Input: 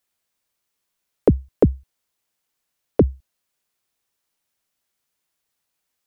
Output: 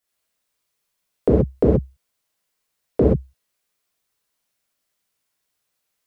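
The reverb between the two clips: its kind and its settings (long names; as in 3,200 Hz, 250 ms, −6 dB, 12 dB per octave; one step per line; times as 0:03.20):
reverb whose tail is shaped and stops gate 150 ms flat, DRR −6 dB
level −5 dB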